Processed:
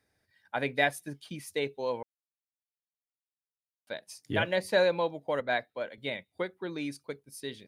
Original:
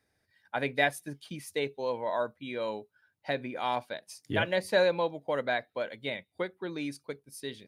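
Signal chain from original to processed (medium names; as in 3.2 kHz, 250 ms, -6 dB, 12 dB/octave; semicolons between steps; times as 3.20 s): 2.03–3.87 s: mute; 5.40–5.98 s: three bands expanded up and down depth 70%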